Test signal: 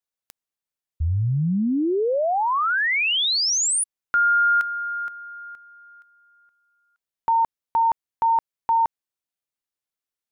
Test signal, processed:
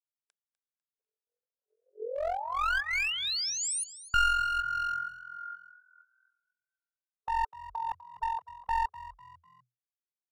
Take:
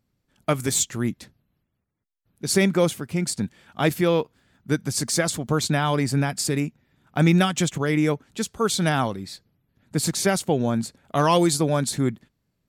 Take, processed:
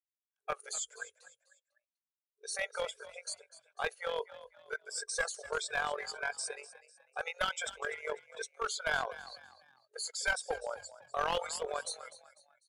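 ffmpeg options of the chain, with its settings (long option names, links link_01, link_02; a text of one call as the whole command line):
ffmpeg -i in.wav -filter_complex "[0:a]afftfilt=real='re*pow(10,9/40*sin(2*PI*(1.7*log(max(b,1)*sr/1024/100)/log(2)-(1.5)*(pts-256)/sr)))':imag='im*pow(10,9/40*sin(2*PI*(1.7*log(max(b,1)*sr/1024/100)/log(2)-(1.5)*(pts-256)/sr)))':win_size=1024:overlap=0.75,bandreject=frequency=1800:width=6.2,agate=range=-20dB:threshold=-58dB:ratio=3:release=151:detection=rms,afftdn=noise_reduction=16:noise_floor=-30,afftfilt=real='re*between(b*sr/4096,420,11000)':imag='im*between(b*sr/4096,420,11000)':win_size=4096:overlap=0.75,equalizer=frequency=1600:width=4.3:gain=11.5,acrossover=split=2200[link_01][link_02];[link_01]tremolo=f=44:d=0.788[link_03];[link_02]alimiter=limit=-20.5dB:level=0:latency=1:release=11[link_04];[link_03][link_04]amix=inputs=2:normalize=0,aeval=exprs='clip(val(0),-1,0.0944)':channel_layout=same,asplit=4[link_05][link_06][link_07][link_08];[link_06]adelay=249,afreqshift=41,volume=-16dB[link_09];[link_07]adelay=498,afreqshift=82,volume=-24.4dB[link_10];[link_08]adelay=747,afreqshift=123,volume=-32.8dB[link_11];[link_05][link_09][link_10][link_11]amix=inputs=4:normalize=0,volume=-8.5dB" out.wav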